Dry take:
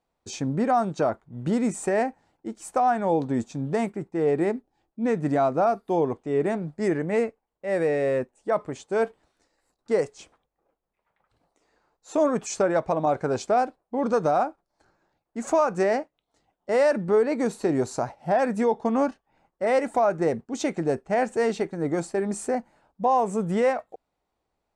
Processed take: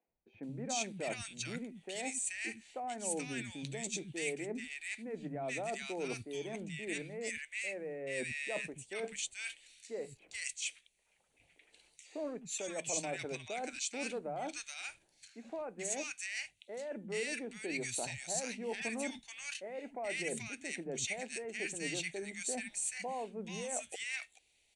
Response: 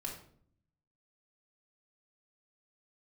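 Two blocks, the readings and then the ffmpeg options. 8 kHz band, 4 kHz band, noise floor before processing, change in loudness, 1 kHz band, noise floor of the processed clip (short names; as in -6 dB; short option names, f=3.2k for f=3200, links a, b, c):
+2.5 dB, +1.5 dB, -81 dBFS, -14.0 dB, -19.5 dB, -73 dBFS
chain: -filter_complex "[0:a]aemphasis=mode=production:type=50fm,bandreject=f=5.1k:w=7.4,acontrast=35,highshelf=f=1.7k:t=q:w=3:g=12.5,alimiter=limit=-4dB:level=0:latency=1:release=383,areverse,acompressor=threshold=-28dB:ratio=6,areverse,acrossover=split=200|1300[a][b][c];[a]adelay=80[d];[c]adelay=430[e];[d][b][e]amix=inputs=3:normalize=0,aresample=22050,aresample=44100,volume=-8dB"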